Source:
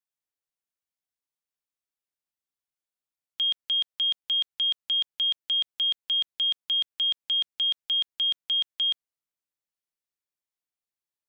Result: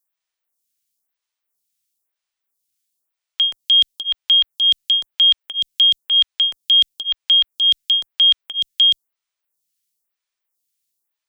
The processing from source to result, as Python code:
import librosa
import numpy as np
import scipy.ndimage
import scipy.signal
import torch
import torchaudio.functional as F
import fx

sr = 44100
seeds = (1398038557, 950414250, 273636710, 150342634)

y = fx.high_shelf(x, sr, hz=2400.0, db=11.0)
y = fx.stagger_phaser(y, sr, hz=1.0)
y = y * librosa.db_to_amplitude(7.5)